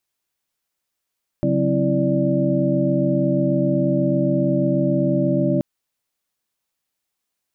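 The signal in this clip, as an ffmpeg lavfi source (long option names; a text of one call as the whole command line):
ffmpeg -f lavfi -i "aevalsrc='0.075*(sin(2*PI*138.59*t)+sin(2*PI*185*t)+sin(2*PI*261.63*t)+sin(2*PI*329.63*t)+sin(2*PI*587.33*t))':duration=4.18:sample_rate=44100" out.wav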